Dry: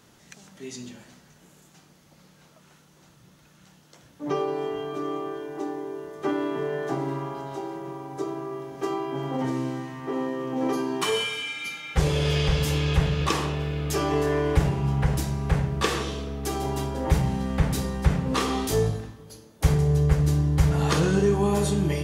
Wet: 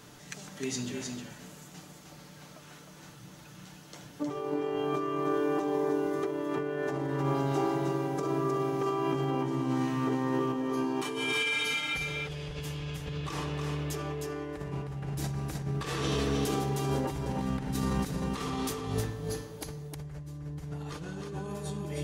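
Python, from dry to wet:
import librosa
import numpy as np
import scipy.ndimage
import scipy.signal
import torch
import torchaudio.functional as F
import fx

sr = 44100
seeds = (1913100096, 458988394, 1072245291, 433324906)

p1 = x + 0.39 * np.pad(x, (int(6.8 * sr / 1000.0), 0))[:len(x)]
p2 = fx.over_compress(p1, sr, threshold_db=-32.0, ratio=-1.0)
p3 = p2 + fx.echo_single(p2, sr, ms=311, db=-4.5, dry=0)
y = p3 * librosa.db_to_amplitude(-2.5)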